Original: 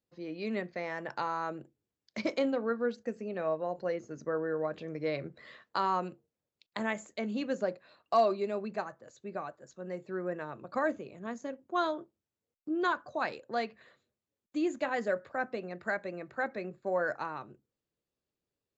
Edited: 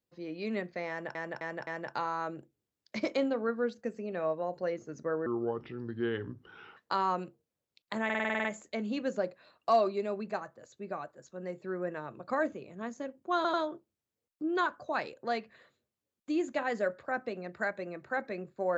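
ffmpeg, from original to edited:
-filter_complex "[0:a]asplit=16[a][b][c][d][e][f][g][h][i][j][k][l][m][n][o][p];[a]atrim=end=1.152[q];[b]atrim=start=0.888:end=1.152[r];[c]atrim=start=0.888:end=1.152[s];[d]atrim=start=0.888:end=4.484[t];[e]atrim=start=4.48:end=5.61,asetpts=PTS-STARTPTS,asetrate=33075,aresample=44100[u];[f]atrim=start=5.606:end=6.942[v];[g]atrim=start=6.888:end=6.942[w];[h]atrim=start=6.888:end=6.942[x];[i]atrim=start=6.888:end=6.942[y];[j]atrim=start=6.888:end=6.942[z];[k]atrim=start=6.888:end=6.942[aa];[l]atrim=start=6.888:end=6.942[ab];[m]atrim=start=6.888:end=6.942[ac];[n]atrim=start=6.888:end=11.892[ad];[o]atrim=start=11.798:end=11.892[ae];[p]atrim=start=11.798[af];[q][r]acrossfade=d=0.004:c1=hsin:c2=hsin[ag];[ag][s]acrossfade=d=0.004:c1=hsin:c2=hsin[ah];[ah][t]acrossfade=d=0.004:c1=hsin:c2=hsin[ai];[ai][u]acrossfade=d=0.004:c1=hsin:c2=hsin[aj];[aj][v]acrossfade=d=0.004:c1=hsin:c2=hsin[ak];[ak][w]acrossfade=d=0.004:c1=hsin:c2=hsin[al];[al][x]acrossfade=d=0.004:c1=hsin:c2=hsin[am];[am][y]acrossfade=d=0.004:c1=hsin:c2=hsin[an];[an][z]acrossfade=d=0.004:c1=hsin:c2=hsin[ao];[ao][aa]acrossfade=d=0.004:c1=hsin:c2=hsin[ap];[ap][ab]acrossfade=d=0.004:c1=hsin:c2=hsin[aq];[aq][ac]acrossfade=d=0.004:c1=hsin:c2=hsin[ar];[ar][ad]acrossfade=d=0.004:c1=hsin:c2=hsin[as];[as][ae]acrossfade=d=0.004:c1=hsin:c2=hsin[at];[at][af]acrossfade=d=0.004:c1=hsin:c2=hsin"

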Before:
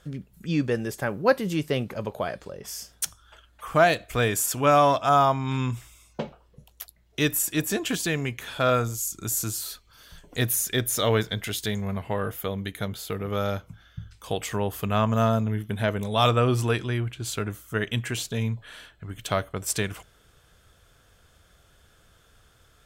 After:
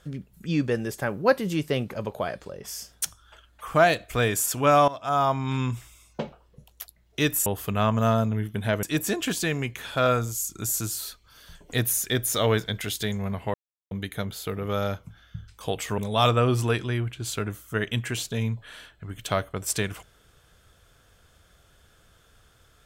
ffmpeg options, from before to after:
-filter_complex "[0:a]asplit=7[a][b][c][d][e][f][g];[a]atrim=end=4.88,asetpts=PTS-STARTPTS,afade=t=out:st=4.876:d=0.004:c=hsin:silence=0.11885[h];[b]atrim=start=4.88:end=7.462,asetpts=PTS-STARTPTS,afade=t=in:d=0.51:silence=0.11885[i];[c]atrim=start=14.608:end=15.982[j];[d]atrim=start=7.458:end=12.17,asetpts=PTS-STARTPTS,afade=t=out:st=4.708:d=0.004:c=hsin[k];[e]atrim=start=12.17:end=12.54,asetpts=PTS-STARTPTS,volume=0[l];[f]atrim=start=12.54:end=14.612,asetpts=PTS-STARTPTS,afade=t=in:d=0.004:c=hsin[m];[g]atrim=start=15.978[n];[h][i]concat=n=2:v=0:a=1[o];[o][j]acrossfade=d=0.004:c1=hsin:c2=hsin[p];[k][l][m]concat=n=3:v=0:a=1[q];[p][q]acrossfade=d=0.004:c1=hsin:c2=hsin[r];[r][n]acrossfade=d=0.004:c1=hsin:c2=hsin"

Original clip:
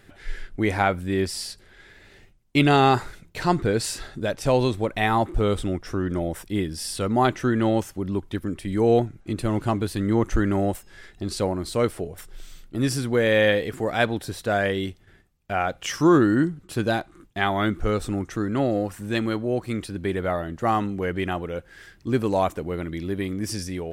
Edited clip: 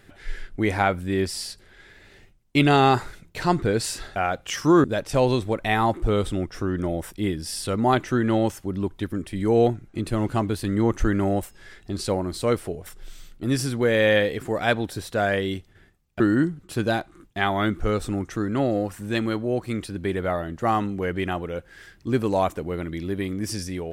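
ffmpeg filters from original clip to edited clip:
-filter_complex "[0:a]asplit=4[a][b][c][d];[a]atrim=end=4.162[e];[b]atrim=start=15.518:end=16.202[f];[c]atrim=start=4.158:end=15.522[g];[d]atrim=start=16.198[h];[e][f]acrossfade=d=0.004:c1=hsin:c2=hsin[i];[i][g]acrossfade=d=0.004:c1=hsin:c2=hsin[j];[j][h]acrossfade=d=0.004:c1=hsin:c2=hsin"

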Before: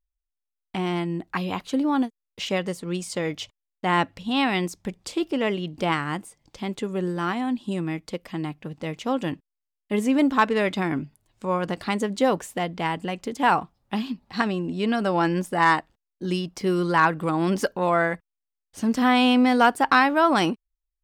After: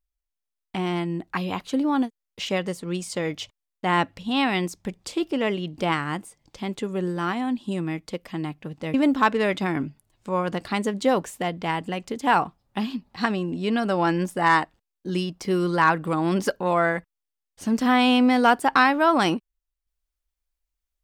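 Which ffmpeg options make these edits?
-filter_complex "[0:a]asplit=2[a][b];[a]atrim=end=8.942[c];[b]atrim=start=10.098[d];[c][d]acrossfade=d=0.004:c1=hsin:c2=hsin"

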